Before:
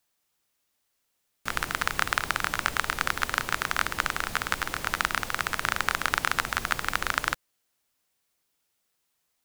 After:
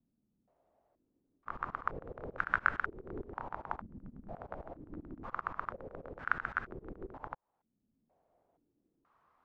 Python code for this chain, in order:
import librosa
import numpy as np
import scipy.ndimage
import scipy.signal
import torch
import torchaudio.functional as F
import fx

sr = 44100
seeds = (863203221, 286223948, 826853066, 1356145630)

y = fx.auto_swell(x, sr, attack_ms=671.0)
y = fx.filter_held_lowpass(y, sr, hz=2.1, low_hz=230.0, high_hz=1500.0)
y = F.gain(torch.from_numpy(y), 8.5).numpy()